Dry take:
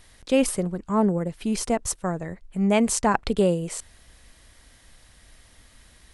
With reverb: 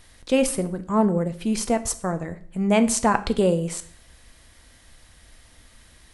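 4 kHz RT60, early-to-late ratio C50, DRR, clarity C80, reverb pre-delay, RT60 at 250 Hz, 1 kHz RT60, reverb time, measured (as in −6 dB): 0.45 s, 15.5 dB, 10.0 dB, 19.0 dB, 5 ms, 0.60 s, 0.50 s, 0.50 s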